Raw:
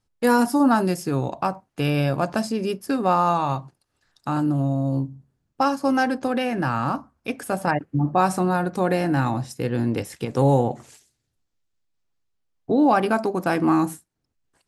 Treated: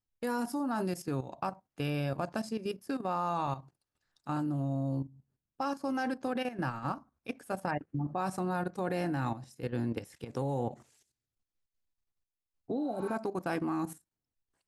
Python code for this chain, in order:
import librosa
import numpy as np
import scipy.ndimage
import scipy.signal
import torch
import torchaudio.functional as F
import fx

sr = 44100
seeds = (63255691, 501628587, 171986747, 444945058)

y = fx.level_steps(x, sr, step_db=12)
y = fx.spec_repair(y, sr, seeds[0], start_s=12.81, length_s=0.3, low_hz=760.0, high_hz=7300.0, source='both')
y = F.gain(torch.from_numpy(y), -8.0).numpy()